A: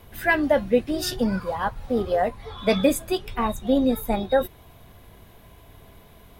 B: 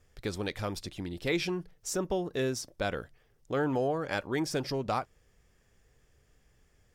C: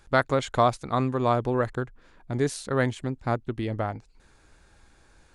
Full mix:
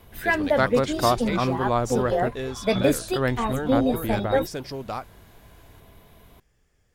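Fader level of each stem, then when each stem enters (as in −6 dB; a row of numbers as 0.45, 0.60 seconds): −2.0, −1.0, 0.0 decibels; 0.00, 0.00, 0.45 seconds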